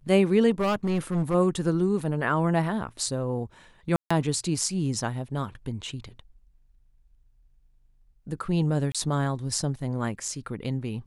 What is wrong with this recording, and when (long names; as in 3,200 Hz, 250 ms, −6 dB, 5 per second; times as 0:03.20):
0:00.50–0:01.35: clipping −21.5 dBFS
0:03.96–0:04.11: drop-out 145 ms
0:08.92–0:08.95: drop-out 26 ms